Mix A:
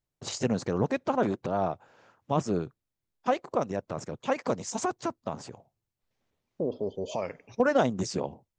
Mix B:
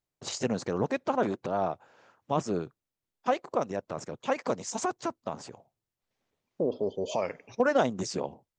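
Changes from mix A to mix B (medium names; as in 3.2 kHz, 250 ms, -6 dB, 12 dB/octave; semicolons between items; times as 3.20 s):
second voice +3.0 dB; master: add bass shelf 160 Hz -8 dB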